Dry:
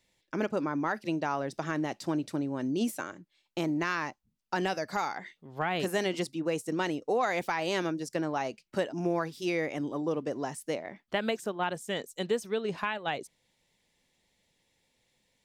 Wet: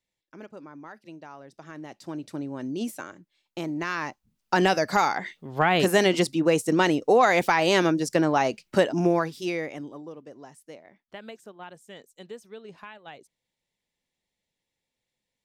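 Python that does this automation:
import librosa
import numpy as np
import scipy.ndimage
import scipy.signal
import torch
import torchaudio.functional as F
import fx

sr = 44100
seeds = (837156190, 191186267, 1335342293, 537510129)

y = fx.gain(x, sr, db=fx.line((1.49, -13.0), (2.42, -1.0), (3.72, -1.0), (4.62, 9.5), (8.97, 9.5), (9.74, -2.0), (10.15, -11.5)))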